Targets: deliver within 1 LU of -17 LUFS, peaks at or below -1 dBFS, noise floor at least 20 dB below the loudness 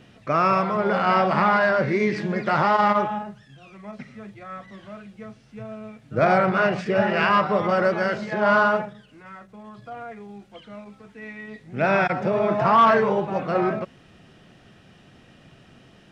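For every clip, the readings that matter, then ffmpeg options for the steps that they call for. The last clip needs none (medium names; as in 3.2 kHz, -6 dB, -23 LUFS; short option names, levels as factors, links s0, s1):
loudness -21.0 LUFS; peak level -6.5 dBFS; loudness target -17.0 LUFS
-> -af "volume=1.58"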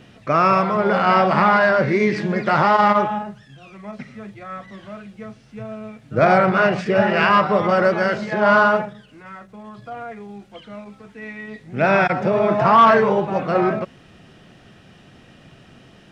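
loudness -17.0 LUFS; peak level -2.5 dBFS; noise floor -49 dBFS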